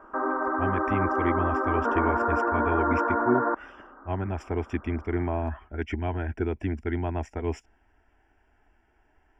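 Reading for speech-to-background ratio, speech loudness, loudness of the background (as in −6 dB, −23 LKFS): −4.5 dB, −31.0 LKFS, −26.5 LKFS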